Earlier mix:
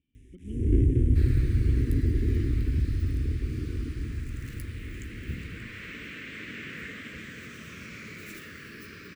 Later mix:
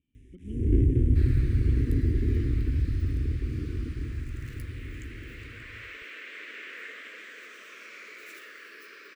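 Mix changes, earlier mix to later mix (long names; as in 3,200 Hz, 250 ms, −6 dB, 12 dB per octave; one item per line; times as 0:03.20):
second sound: add high-pass filter 420 Hz 24 dB per octave
master: add high-shelf EQ 4,900 Hz −6 dB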